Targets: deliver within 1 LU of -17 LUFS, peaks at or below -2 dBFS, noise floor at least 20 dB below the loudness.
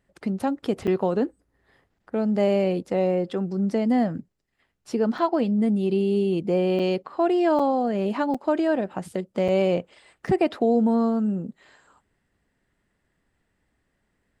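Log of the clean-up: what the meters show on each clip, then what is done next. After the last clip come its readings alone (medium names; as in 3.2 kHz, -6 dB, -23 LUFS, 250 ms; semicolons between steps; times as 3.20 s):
dropouts 7; longest dropout 5.6 ms; loudness -24.0 LUFS; peak level -10.0 dBFS; loudness target -17.0 LUFS
-> interpolate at 0.87/5.18/6.79/7.59/8.34/9.48/10.27 s, 5.6 ms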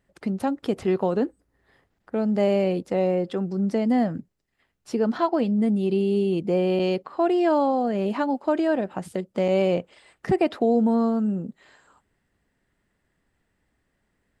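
dropouts 0; loudness -24.0 LUFS; peak level -10.0 dBFS; loudness target -17.0 LUFS
-> trim +7 dB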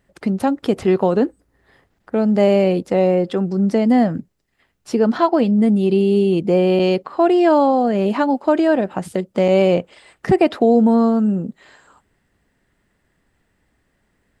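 loudness -17.0 LUFS; peak level -3.0 dBFS; noise floor -67 dBFS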